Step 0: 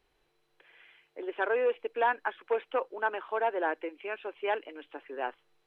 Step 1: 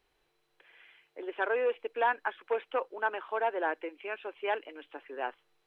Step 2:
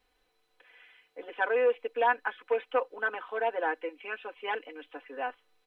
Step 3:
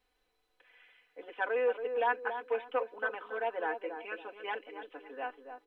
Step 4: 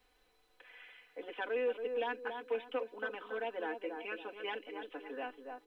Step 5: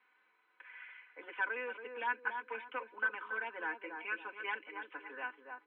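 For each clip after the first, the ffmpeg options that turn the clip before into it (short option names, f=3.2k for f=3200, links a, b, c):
-af "lowshelf=f=470:g=-3.5"
-af "aecho=1:1:4:0.97,volume=-1.5dB"
-filter_complex "[0:a]asplit=2[a][b];[b]adelay=279,lowpass=f=830:p=1,volume=-6dB,asplit=2[c][d];[d]adelay=279,lowpass=f=830:p=1,volume=0.38,asplit=2[e][f];[f]adelay=279,lowpass=f=830:p=1,volume=0.38,asplit=2[g][h];[h]adelay=279,lowpass=f=830:p=1,volume=0.38,asplit=2[i][j];[j]adelay=279,lowpass=f=830:p=1,volume=0.38[k];[a][c][e][g][i][k]amix=inputs=6:normalize=0,volume=-4.5dB"
-filter_complex "[0:a]acrossover=split=330|3000[a][b][c];[b]acompressor=threshold=-53dB:ratio=2.5[d];[a][d][c]amix=inputs=3:normalize=0,volume=6dB"
-af "highpass=f=220:w=0.5412,highpass=f=220:w=1.3066,equalizer=f=270:t=q:w=4:g=-8,equalizer=f=470:t=q:w=4:g=-8,equalizer=f=690:t=q:w=4:g=-9,equalizer=f=1k:t=q:w=4:g=9,equalizer=f=1.5k:t=q:w=4:g=10,equalizer=f=2.2k:t=q:w=4:g=8,lowpass=f=2.9k:w=0.5412,lowpass=f=2.9k:w=1.3066,volume=-2.5dB"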